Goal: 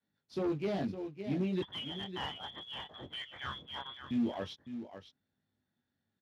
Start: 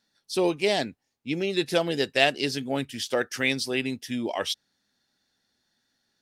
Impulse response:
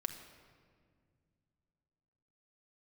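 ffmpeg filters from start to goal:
-filter_complex "[0:a]flanger=delay=19.5:depth=2.2:speed=0.39,asettb=1/sr,asplit=3[link_01][link_02][link_03];[link_01]atrim=end=1.624[link_04];[link_02]atrim=start=1.62:end=4.11,asetpts=PTS-STARTPTS,afade=type=in:duration=0.004:curve=qsin,afade=type=out:start_time=2.486:duration=0.004:curve=qsin,lowpass=frequency=3100:width_type=q:width=0.5098,lowpass=frequency=3100:width_type=q:width=0.6013,lowpass=frequency=3100:width_type=q:width=0.9,lowpass=frequency=3100:width_type=q:width=2.563,afreqshift=-3600[link_05];[link_03]atrim=start=4.106[link_06];[link_04][link_05]acrossfade=duration=0.004:curve1=hsin:curve2=qsin[link_07];[link_07][link_06]acrossfade=duration=0.004:curve1=qsin:curve2=hsin,adynamicequalizer=threshold=0.00447:dfrequency=220:dqfactor=2.2:tfrequency=220:tqfactor=2.2:attack=5:release=100:ratio=0.375:range=2:mode=boostabove:tftype=bell,aecho=1:1:557:0.251,asoftclip=type=tanh:threshold=-23dB,acrusher=bits=3:mode=log:mix=0:aa=0.000001,aemphasis=mode=reproduction:type=riaa,volume=-8dB" -ar 32000 -c:a libspeex -b:a 36k

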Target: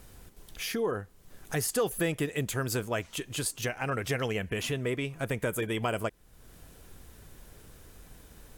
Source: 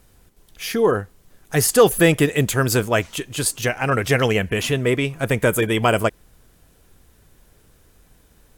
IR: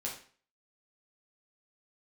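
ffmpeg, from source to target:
-af "acompressor=threshold=-43dB:ratio=2,volume=2.5dB"

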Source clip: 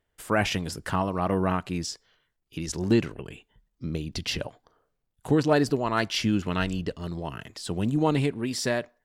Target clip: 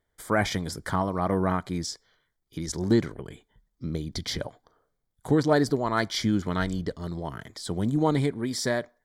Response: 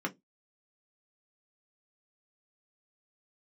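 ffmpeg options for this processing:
-af "asuperstop=centerf=2700:order=4:qfactor=3.7"

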